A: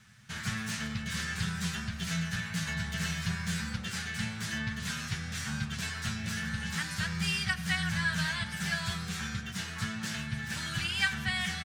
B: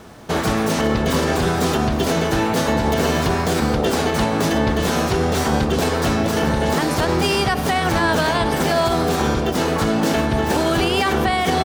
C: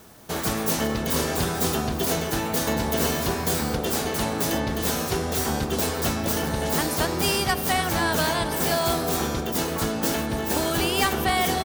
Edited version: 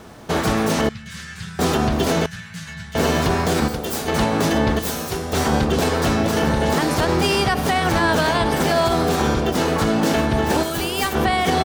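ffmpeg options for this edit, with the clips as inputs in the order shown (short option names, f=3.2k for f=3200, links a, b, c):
-filter_complex "[0:a]asplit=2[a][b];[2:a]asplit=3[c][d][e];[1:a]asplit=6[f][g][h][i][j][k];[f]atrim=end=0.892[l];[a]atrim=start=0.888:end=1.592[m];[g]atrim=start=1.588:end=2.262[n];[b]atrim=start=2.258:end=2.952[o];[h]atrim=start=2.948:end=3.682[p];[c]atrim=start=3.678:end=4.082[q];[i]atrim=start=4.078:end=4.792[r];[d]atrim=start=4.788:end=5.332[s];[j]atrim=start=5.328:end=10.632[t];[e]atrim=start=10.628:end=11.152[u];[k]atrim=start=11.148[v];[l][m]acrossfade=d=0.004:c1=hsin:c2=hsin[w];[w][n]acrossfade=d=0.004:c1=hsin:c2=hsin[x];[x][o]acrossfade=d=0.004:c1=hsin:c2=hsin[y];[y][p]acrossfade=d=0.004:c1=hsin:c2=hsin[z];[z][q]acrossfade=d=0.004:c1=hsin:c2=hsin[aa];[aa][r]acrossfade=d=0.004:c1=hsin:c2=hsin[ab];[ab][s]acrossfade=d=0.004:c1=hsin:c2=hsin[ac];[ac][t]acrossfade=d=0.004:c1=hsin:c2=hsin[ad];[ad][u]acrossfade=d=0.004:c1=hsin:c2=hsin[ae];[ae][v]acrossfade=d=0.004:c1=hsin:c2=hsin"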